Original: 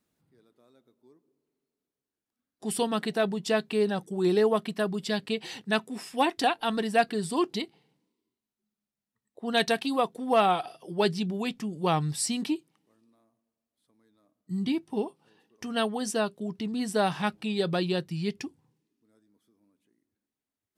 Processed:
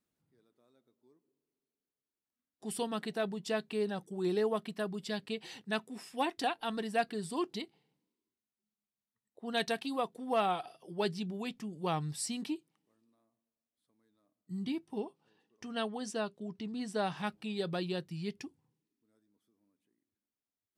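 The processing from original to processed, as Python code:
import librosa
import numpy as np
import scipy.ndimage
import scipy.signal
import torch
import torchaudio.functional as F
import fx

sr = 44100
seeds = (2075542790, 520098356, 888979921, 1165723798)

y = fx.lowpass(x, sr, hz=7900.0, slope=12, at=(14.98, 17.17))
y = y * 10.0 ** (-8.0 / 20.0)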